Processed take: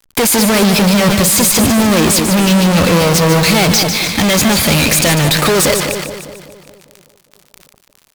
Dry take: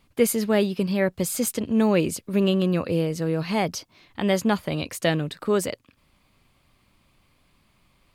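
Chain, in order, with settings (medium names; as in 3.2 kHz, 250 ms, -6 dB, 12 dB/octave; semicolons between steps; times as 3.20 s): resonant high shelf 1.9 kHz +6.5 dB, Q 1.5; band-stop 2.9 kHz, Q 5.1; in parallel at 0 dB: compression 6:1, threshold -31 dBFS, peak gain reduction 16 dB; on the sum: waveshaping leveller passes 2; fuzz box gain 43 dB, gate -49 dBFS; on a send: two-band feedback delay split 880 Hz, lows 201 ms, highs 148 ms, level -8 dB; on the sum: decay stretcher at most 43 dB/s; trim +2.5 dB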